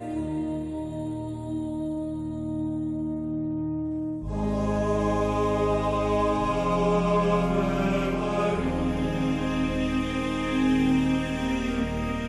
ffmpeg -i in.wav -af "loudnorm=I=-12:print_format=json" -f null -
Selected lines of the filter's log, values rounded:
"input_i" : "-26.5",
"input_tp" : "-12.2",
"input_lra" : "5.9",
"input_thresh" : "-36.5",